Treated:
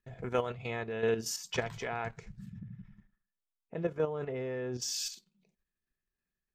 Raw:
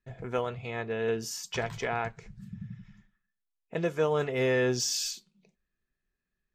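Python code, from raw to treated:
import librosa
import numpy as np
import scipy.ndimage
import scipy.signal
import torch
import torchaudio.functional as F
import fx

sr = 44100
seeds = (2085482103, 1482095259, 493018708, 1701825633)

y = fx.rider(x, sr, range_db=3, speed_s=2.0)
y = fx.lowpass(y, sr, hz=1100.0, slope=6, at=(2.58, 4.81), fade=0.02)
y = fx.level_steps(y, sr, step_db=9)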